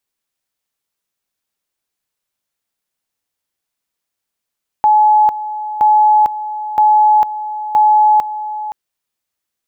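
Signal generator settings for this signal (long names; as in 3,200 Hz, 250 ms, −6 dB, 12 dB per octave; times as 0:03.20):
tone at two levels in turn 851 Hz −6.5 dBFS, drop 13.5 dB, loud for 0.45 s, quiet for 0.52 s, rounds 4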